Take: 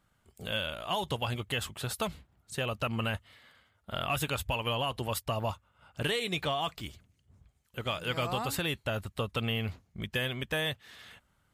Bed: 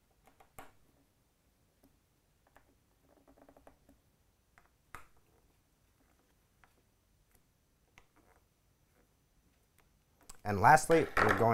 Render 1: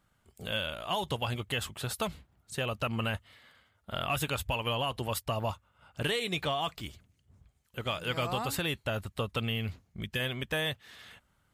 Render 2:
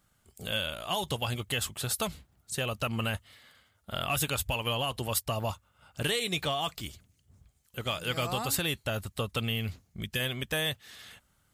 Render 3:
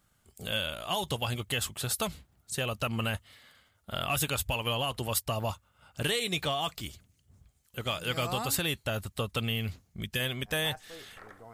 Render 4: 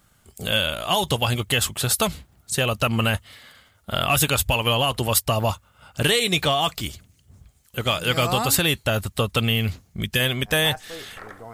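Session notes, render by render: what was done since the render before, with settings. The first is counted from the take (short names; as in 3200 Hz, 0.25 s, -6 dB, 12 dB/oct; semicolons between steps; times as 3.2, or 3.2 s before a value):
9.4–10.2 dynamic EQ 820 Hz, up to -6 dB, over -49 dBFS, Q 0.77
tone controls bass +1 dB, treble +8 dB; notch 970 Hz, Q 23
add bed -22 dB
gain +10 dB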